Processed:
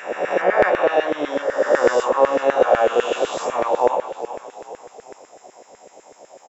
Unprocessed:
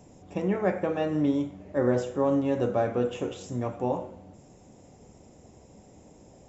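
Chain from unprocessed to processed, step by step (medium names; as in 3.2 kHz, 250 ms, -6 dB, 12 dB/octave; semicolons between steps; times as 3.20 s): reverse spectral sustain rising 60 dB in 2.07 s; frequency-shifting echo 404 ms, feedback 50%, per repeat -33 Hz, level -12 dB; LFO high-pass saw down 8 Hz 440–1800 Hz; trim +6 dB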